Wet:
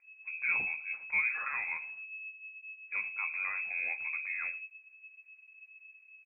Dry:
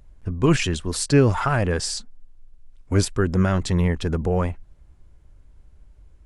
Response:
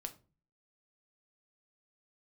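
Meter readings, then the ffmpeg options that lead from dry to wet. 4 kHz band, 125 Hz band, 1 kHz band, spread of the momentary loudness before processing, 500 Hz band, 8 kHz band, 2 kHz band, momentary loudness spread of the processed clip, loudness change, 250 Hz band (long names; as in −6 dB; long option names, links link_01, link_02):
below −40 dB, below −40 dB, −16.5 dB, 10 LU, −37.0 dB, below −40 dB, +0.5 dB, 22 LU, −11.5 dB, below −40 dB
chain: -filter_complex "[0:a]aecho=1:1:112:0.0794[link_01];[1:a]atrim=start_sample=2205,asetrate=79380,aresample=44100[link_02];[link_01][link_02]afir=irnorm=-1:irlink=0,lowpass=frequency=2200:width_type=q:width=0.5098,lowpass=frequency=2200:width_type=q:width=0.6013,lowpass=frequency=2200:width_type=q:width=0.9,lowpass=frequency=2200:width_type=q:width=2.563,afreqshift=-2600,volume=-7.5dB"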